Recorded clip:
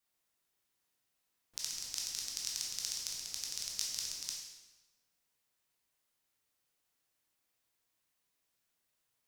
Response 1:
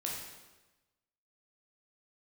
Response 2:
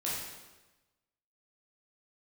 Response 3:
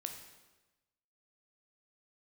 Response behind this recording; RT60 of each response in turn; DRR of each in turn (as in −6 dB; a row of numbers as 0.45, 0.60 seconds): 1; 1.1, 1.1, 1.1 seconds; −3.0, −7.5, 4.0 decibels